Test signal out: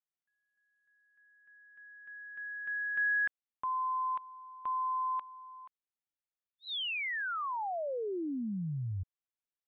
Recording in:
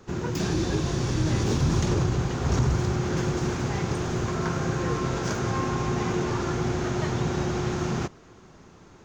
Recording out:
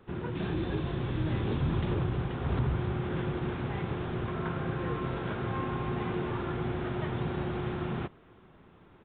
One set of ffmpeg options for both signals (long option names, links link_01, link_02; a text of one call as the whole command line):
ffmpeg -i in.wav -af "aresample=8000,aresample=44100,volume=-6dB" out.wav